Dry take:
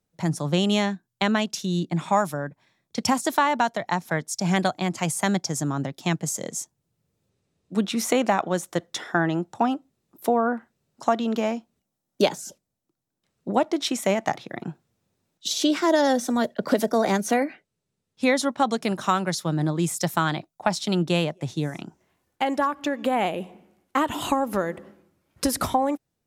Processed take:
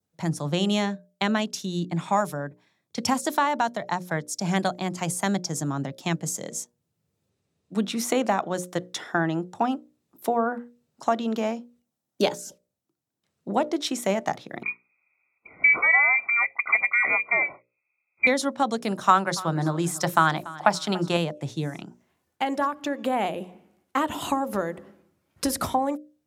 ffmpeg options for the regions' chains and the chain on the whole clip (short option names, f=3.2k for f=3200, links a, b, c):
-filter_complex "[0:a]asettb=1/sr,asplit=3[a][b][c];[a]atrim=end=14.634[d];[b]atrim=start=14.63:end=18.27,asetpts=PTS-STARTPTS,afade=t=in:d=0.004:c=qsin,afade=t=out:st=3.636:d=0.004:c=qsin,acontrast=29,lowpass=f=2.2k:t=q:w=0.5098,lowpass=f=2.2k:t=q:w=0.6013,lowpass=f=2.2k:t=q:w=0.9,lowpass=f=2.2k:t=q:w=2.563,afreqshift=-2600,asuperstop=centerf=1700:order=8:qfactor=4.1[e];[c]atrim=start=18.266[f];[d][e]acrossfade=d=0.004:c1=hsin:c2=qsin[g];[g][f]acrossfade=d=0.004:c1=qsin:c2=hsin,asettb=1/sr,asplit=3[h][i][j];[h]atrim=end=19.074[k];[i]atrim=start=19.07:end=21.17,asetpts=PTS-STARTPTS,afade=t=in:d=0.004:c=qsin,afade=t=out:st=2.096:d=0.004:c=qsin,equalizer=f=1.2k:t=o:w=1.9:g=7.5,bandreject=f=60:t=h:w=6,bandreject=f=120:t=h:w=6,bandreject=f=180:t=h:w=6,bandreject=f=240:t=h:w=6,bandreject=f=300:t=h:w=6,bandreject=f=360:t=h:w=6,bandreject=f=420:t=h:w=6,bandreject=f=480:t=h:w=6,bandreject=f=540:t=h:w=6,aecho=1:1:287|574|861:0.119|0.0428|0.0154,atrim=end_sample=92610[l];[j]atrim=start=21.166[m];[k][l]acrossfade=d=0.004:c1=hsin:c2=qsin[n];[n][m]acrossfade=d=0.004:c1=qsin:c2=hsin,highpass=54,bandreject=f=60:t=h:w=6,bandreject=f=120:t=h:w=6,bandreject=f=180:t=h:w=6,bandreject=f=240:t=h:w=6,bandreject=f=300:t=h:w=6,bandreject=f=360:t=h:w=6,bandreject=f=420:t=h:w=6,bandreject=f=480:t=h:w=6,bandreject=f=540:t=h:w=6,bandreject=f=600:t=h:w=6,adynamicequalizer=threshold=0.01:dfrequency=2400:dqfactor=1.3:tfrequency=2400:tqfactor=1.3:attack=5:release=100:ratio=0.375:range=2:mode=cutabove:tftype=bell,volume=-1.5dB"